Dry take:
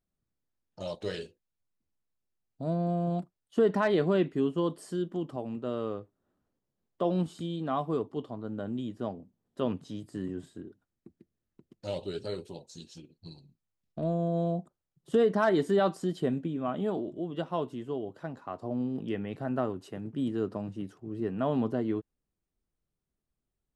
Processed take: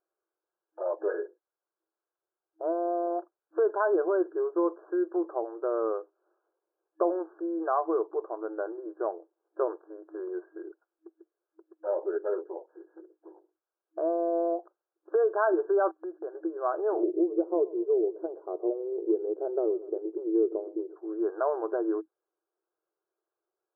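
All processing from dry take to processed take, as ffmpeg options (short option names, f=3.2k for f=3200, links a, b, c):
-filter_complex "[0:a]asettb=1/sr,asplit=3[a][b][c];[a]atrim=end=15.914[d];[b]atrim=start=15.91:end=16.35,asetpts=PTS-STARTPTS,afade=t=in:d=0.004:c=qsin,afade=t=out:st=0.436:d=0.004:c=qsin,agate=range=-25dB:threshold=-43dB:ratio=16:release=100:detection=peak,acompressor=threshold=-42dB:ratio=2.5:attack=3.2:release=140:knee=1:detection=peak[e];[c]atrim=start=16.346[f];[d][e]acrossfade=d=0.004:c1=hsin:c2=qsin[g];[g][f]acrossfade=d=0.004:c1=qsin:c2=hsin,asettb=1/sr,asplit=3[h][i][j];[h]atrim=end=17.034[k];[i]atrim=start=17.03:end=20.96,asetpts=PTS-STARTPTS,afade=t=in:d=0.004:c=qsin,afade=t=out:st=3.926:d=0.004:c=qsin,lowpass=f=410:t=q:w=2.5,aecho=1:1:120|240|360:0.0891|0.0357|0.0143,atrim=end_sample=173313[l];[j]atrim=start=20.956[m];[k][l]acrossfade=d=0.004:c1=hsin:c2=qsin[n];[n][m]acrossfade=d=0.004:c1=qsin:c2=hsin,acompressor=threshold=-28dB:ratio=4,afftfilt=real='re*between(b*sr/4096,320,1700)':imag='im*between(b*sr/4096,320,1700)':win_size=4096:overlap=0.75,volume=7dB"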